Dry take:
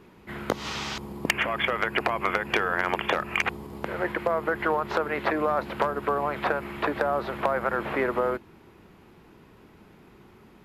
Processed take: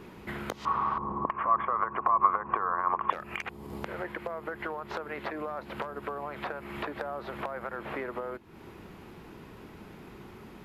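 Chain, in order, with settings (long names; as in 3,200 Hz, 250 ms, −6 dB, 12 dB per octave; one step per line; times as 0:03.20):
downward compressor 5 to 1, threshold −40 dBFS, peak gain reduction 19.5 dB
0:00.65–0:03.10: low-pass with resonance 1,100 Hz, resonance Q 13
level +5 dB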